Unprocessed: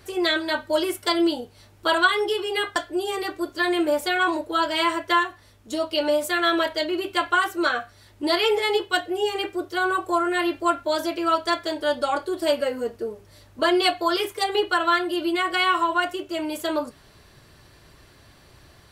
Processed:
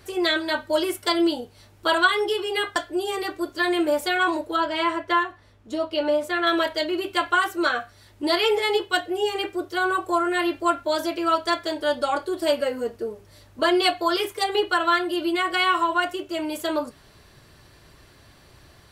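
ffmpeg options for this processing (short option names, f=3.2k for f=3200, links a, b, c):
-filter_complex "[0:a]asettb=1/sr,asplit=3[a][b][c];[a]atrim=end=4.564[d];[b]atrim=start=4.56:end=6.47,asetpts=PTS-STARTPTS,afade=t=in:d=0.004:c=qsin,afade=t=out:st=1.906:d=0.004:c=qsin,lowpass=f=2.4k:p=1[e];[c]atrim=start=6.466[f];[d][e]acrossfade=d=0.004:c1=hsin:c2=qsin[g];[g][f]acrossfade=d=0.004:c1=qsin:c2=hsin"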